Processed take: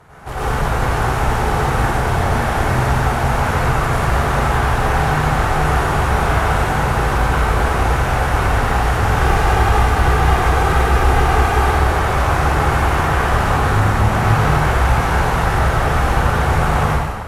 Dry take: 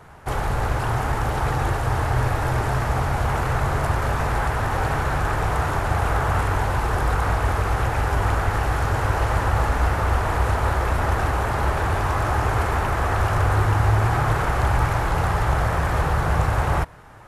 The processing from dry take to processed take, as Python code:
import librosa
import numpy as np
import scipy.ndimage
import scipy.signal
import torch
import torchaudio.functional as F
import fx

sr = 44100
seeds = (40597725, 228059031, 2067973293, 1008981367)

y = fx.comb(x, sr, ms=2.5, depth=0.75, at=(9.04, 11.6))
y = fx.clip_asym(y, sr, top_db=-26.5, bottom_db=-13.5)
y = fx.rev_plate(y, sr, seeds[0], rt60_s=1.6, hf_ratio=0.95, predelay_ms=80, drr_db=-9.0)
y = y * 10.0 ** (-1.0 / 20.0)